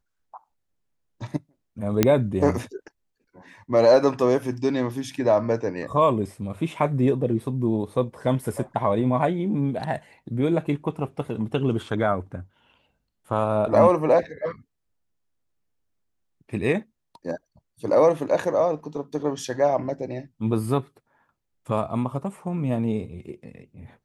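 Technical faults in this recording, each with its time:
0:02.03: click −3 dBFS

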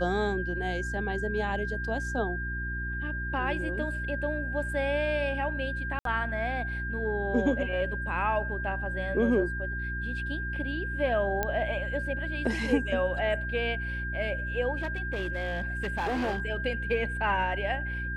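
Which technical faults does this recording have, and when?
mains hum 60 Hz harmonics 6 −35 dBFS
whistle 1,600 Hz −34 dBFS
0:05.99–0:06.05: drop-out 63 ms
0:11.43: click −14 dBFS
0:14.76–0:16.42: clipping −26 dBFS

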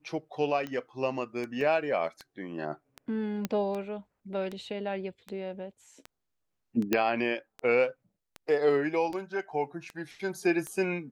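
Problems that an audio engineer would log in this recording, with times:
scratch tick 78 rpm −24 dBFS
0:01.61: drop-out 2.2 ms
0:03.45: click −16 dBFS
0:06.93: click −11 dBFS

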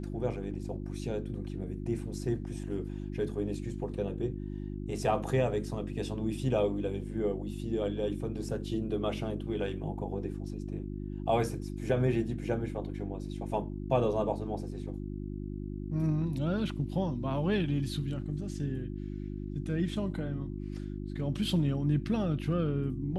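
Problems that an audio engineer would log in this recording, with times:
mains hum 50 Hz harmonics 7 −38 dBFS

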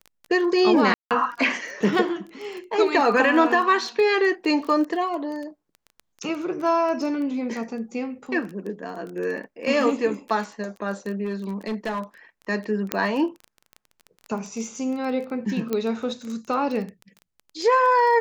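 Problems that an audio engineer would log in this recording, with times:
surface crackle 16 per second −30 dBFS
0:00.94–0:01.11: drop-out 168 ms
0:11.24–0:12.00: clipping −23 dBFS
0:12.92: click −7 dBFS
0:15.73: click −12 dBFS

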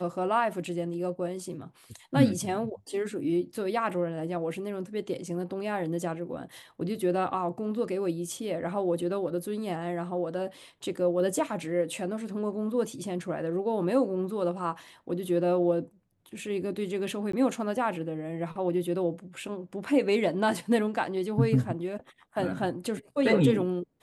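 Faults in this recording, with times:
0:17.32–0:17.33: drop-out 14 ms

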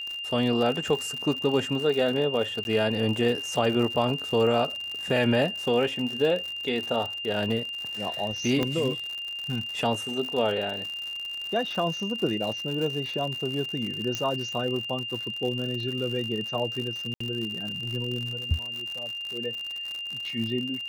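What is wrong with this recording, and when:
surface crackle 97 per second −31 dBFS
whistle 2,800 Hz −32 dBFS
0:02.64–0:02.65: drop-out
0:08.63: click −13 dBFS
0:14.15: click −14 dBFS
0:17.14–0:17.20: drop-out 64 ms

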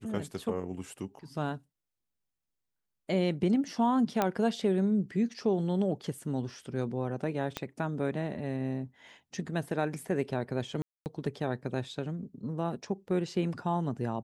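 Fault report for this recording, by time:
0:04.22: click −13 dBFS
0:07.57: click −17 dBFS
0:10.82–0:11.06: drop-out 239 ms

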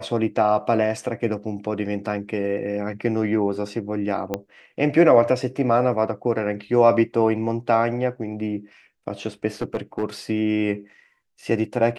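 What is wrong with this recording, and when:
0:04.34: click −11 dBFS
0:09.61–0:10.04: clipping −19 dBFS

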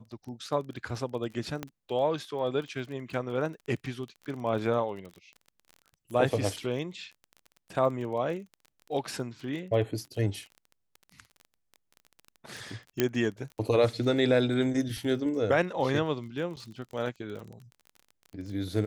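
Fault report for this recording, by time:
surface crackle 26 per second −38 dBFS
0:01.63: click −19 dBFS
0:13.00: click −10 dBFS
0:16.56–0:16.57: drop-out 7.7 ms

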